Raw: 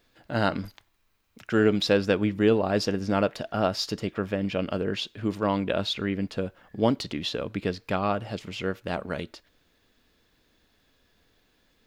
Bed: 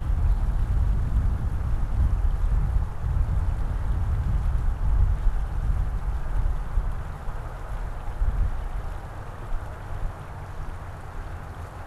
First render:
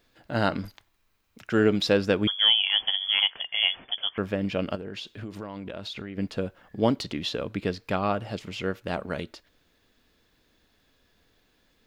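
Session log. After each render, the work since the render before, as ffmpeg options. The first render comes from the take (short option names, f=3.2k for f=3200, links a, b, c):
-filter_complex "[0:a]asettb=1/sr,asplit=3[a][b][c];[a]atrim=end=2.274[d];[b]atrim=start=2.27:end=4.18,asetpts=PTS-STARTPTS,afade=t=in:d=0.004:c=qsin,afade=t=out:st=1.906:d=0.004:c=qsin,lowpass=f=3k:t=q:w=0.5098,lowpass=f=3k:t=q:w=0.6013,lowpass=f=3k:t=q:w=0.9,lowpass=f=3k:t=q:w=2.563,afreqshift=-3500[e];[c]atrim=start=4.176[f];[d][e]acrossfade=d=0.004:c1=hsin:c2=qsin[g];[g][f]acrossfade=d=0.004:c1=qsin:c2=hsin,asettb=1/sr,asplit=3[h][i][j];[h]atrim=end=4.754[k];[i]atrim=start=4.75:end=6.18,asetpts=PTS-STARTPTS,afade=t=in:d=0.004:c=qsin,afade=t=out:st=1.426:d=0.004:c=qsin,acompressor=threshold=-32dB:ratio=16:attack=3.2:release=140:knee=1:detection=peak[l];[j]atrim=start=6.176[m];[k][l]acrossfade=d=0.004:c1=hsin:c2=qsin[n];[n][m]acrossfade=d=0.004:c1=qsin:c2=hsin"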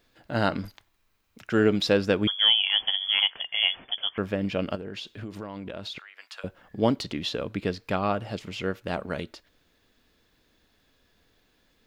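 -filter_complex "[0:a]asettb=1/sr,asplit=3[a][b][c];[a]atrim=end=5.984[d];[b]atrim=start=5.98:end=6.44,asetpts=PTS-STARTPTS,afade=t=in:d=0.004:c=qsin,afade=t=out:st=0.456:d=0.004:c=qsin,highpass=f=1k:w=0.5412,highpass=f=1k:w=1.3066[e];[c]atrim=start=6.436[f];[d][e]acrossfade=d=0.004:c1=hsin:c2=qsin[g];[g][f]acrossfade=d=0.004:c1=qsin:c2=hsin"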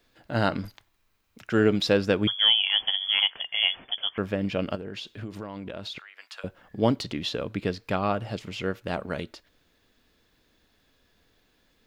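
-af "adynamicequalizer=threshold=0.00562:dfrequency=120:dqfactor=5.2:tfrequency=120:tqfactor=5.2:attack=5:release=100:ratio=0.375:range=2:mode=boostabove:tftype=bell"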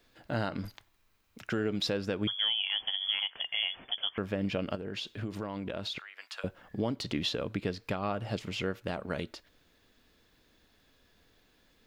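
-af "acompressor=threshold=-25dB:ratio=2.5,alimiter=limit=-20dB:level=0:latency=1:release=296"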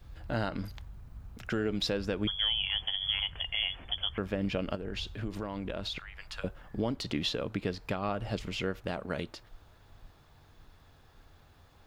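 -filter_complex "[1:a]volume=-23.5dB[a];[0:a][a]amix=inputs=2:normalize=0"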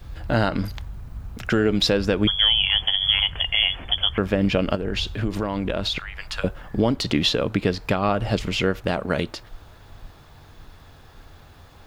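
-af "volume=11.5dB"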